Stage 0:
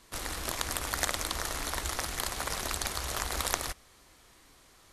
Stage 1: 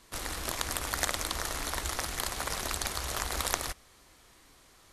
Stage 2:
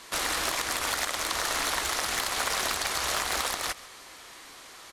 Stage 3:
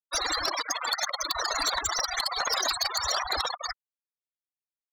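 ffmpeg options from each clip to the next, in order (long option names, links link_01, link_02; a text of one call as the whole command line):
ffmpeg -i in.wav -af anull out.wav
ffmpeg -i in.wav -filter_complex "[0:a]acompressor=threshold=-33dB:ratio=6,asplit=2[link_01][link_02];[link_02]highpass=frequency=720:poles=1,volume=20dB,asoftclip=type=tanh:threshold=-14.5dB[link_03];[link_01][link_03]amix=inputs=2:normalize=0,lowpass=frequency=6600:poles=1,volume=-6dB,aecho=1:1:135:0.106" out.wav
ffmpeg -i in.wav -af "afftfilt=real='re*gte(hypot(re,im),0.0631)':imag='im*gte(hypot(re,im),0.0631)':win_size=1024:overlap=0.75,highshelf=frequency=3500:width_type=q:width=1.5:gain=10.5,aeval=exprs='0.251*(cos(1*acos(clip(val(0)/0.251,-1,1)))-cos(1*PI/2))+0.126*(cos(5*acos(clip(val(0)/0.251,-1,1)))-cos(5*PI/2))':channel_layout=same,volume=-6dB" out.wav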